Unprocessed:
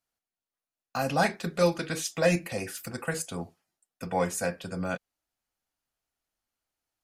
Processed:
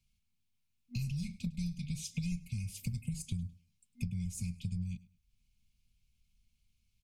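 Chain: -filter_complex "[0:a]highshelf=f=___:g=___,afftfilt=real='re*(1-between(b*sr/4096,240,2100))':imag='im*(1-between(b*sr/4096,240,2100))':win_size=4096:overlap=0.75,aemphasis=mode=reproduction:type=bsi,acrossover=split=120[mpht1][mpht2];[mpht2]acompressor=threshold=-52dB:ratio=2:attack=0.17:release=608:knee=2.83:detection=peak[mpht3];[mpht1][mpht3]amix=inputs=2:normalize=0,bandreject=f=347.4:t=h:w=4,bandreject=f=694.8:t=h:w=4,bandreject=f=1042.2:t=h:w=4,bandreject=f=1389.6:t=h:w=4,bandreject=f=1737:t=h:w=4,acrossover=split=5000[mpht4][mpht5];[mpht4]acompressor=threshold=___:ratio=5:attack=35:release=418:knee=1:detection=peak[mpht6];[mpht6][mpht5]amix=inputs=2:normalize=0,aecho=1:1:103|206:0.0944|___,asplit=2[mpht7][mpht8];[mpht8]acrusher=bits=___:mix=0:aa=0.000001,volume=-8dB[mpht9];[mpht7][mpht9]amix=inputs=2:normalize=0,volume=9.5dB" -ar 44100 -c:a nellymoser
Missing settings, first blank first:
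10000, 9, -46dB, 0.0245, 4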